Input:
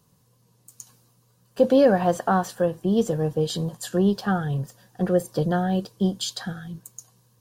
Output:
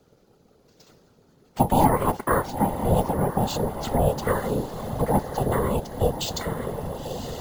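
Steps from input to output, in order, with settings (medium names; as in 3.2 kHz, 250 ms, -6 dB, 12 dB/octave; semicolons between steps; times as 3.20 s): ring modulator 310 Hz; echo that smears into a reverb 997 ms, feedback 54%, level -11.5 dB; in parallel at +1.5 dB: compression, threshold -35 dBFS, peak gain reduction 19 dB; on the sum: careless resampling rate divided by 4×, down filtered, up hold; whisper effect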